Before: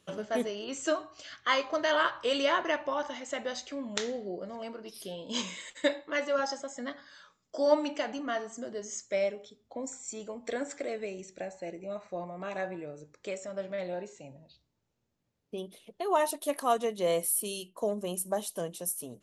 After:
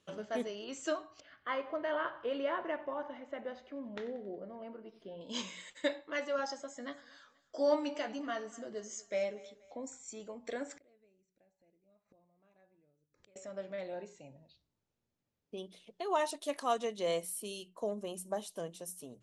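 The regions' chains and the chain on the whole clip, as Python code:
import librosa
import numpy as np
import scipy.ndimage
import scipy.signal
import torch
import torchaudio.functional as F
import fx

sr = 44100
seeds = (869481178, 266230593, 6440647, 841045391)

y = fx.chain(x, sr, fx.lowpass(hz=1700.0, slope=12),
    fx.peak_eq(hz=1200.0, db=-3.0, octaves=1.2),
    fx.echo_feedback(ms=92, feedback_pct=53, wet_db=-18.0), at=(1.2, 5.21))
y = fx.chain(y, sr, fx.doubler(ms=14.0, db=-7.5),
    fx.echo_thinned(ms=240, feedback_pct=43, hz=350.0, wet_db=-19.5), at=(6.57, 9.77))
y = fx.chain(y, sr, fx.low_shelf(hz=280.0, db=11.0),
    fx.gate_flip(shuts_db=-38.0, range_db=-30), at=(10.76, 13.36))
y = fx.chain(y, sr, fx.lowpass(hz=8600.0, slope=12),
    fx.high_shelf(hz=2800.0, db=6.5), at=(15.57, 17.2))
y = scipy.signal.sosfilt(scipy.signal.butter(2, 8000.0, 'lowpass', fs=sr, output='sos'), y)
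y = fx.hum_notches(y, sr, base_hz=60, count=3)
y = y * librosa.db_to_amplitude(-5.5)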